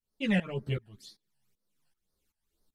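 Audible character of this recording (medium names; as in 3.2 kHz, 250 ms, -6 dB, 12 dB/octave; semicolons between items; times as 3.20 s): phasing stages 12, 2 Hz, lowest notch 370–2700 Hz; tremolo saw up 2.6 Hz, depth 90%; a shimmering, thickened sound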